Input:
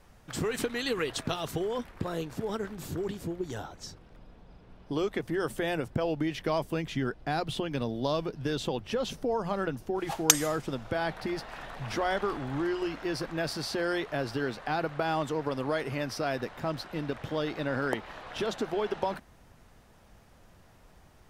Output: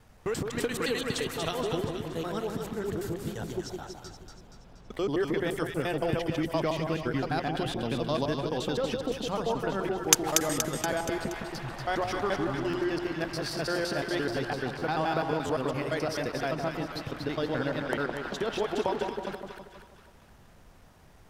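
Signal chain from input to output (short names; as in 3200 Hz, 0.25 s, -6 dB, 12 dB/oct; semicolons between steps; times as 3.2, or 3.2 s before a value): slices in reverse order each 86 ms, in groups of 3; split-band echo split 1100 Hz, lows 0.162 s, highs 0.237 s, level -5 dB; stuck buffer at 4.93/12.7/14.78/15.46/16.92, samples 512, times 2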